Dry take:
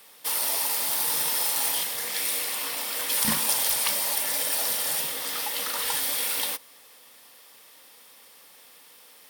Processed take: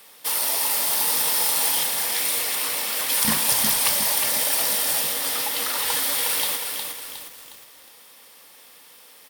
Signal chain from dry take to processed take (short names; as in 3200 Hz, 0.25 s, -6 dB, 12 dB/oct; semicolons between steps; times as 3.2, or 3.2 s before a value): frequency-shifting echo 0.234 s, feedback 45%, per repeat -86 Hz, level -16.5 dB; lo-fi delay 0.361 s, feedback 55%, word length 7-bit, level -5 dB; gain +3 dB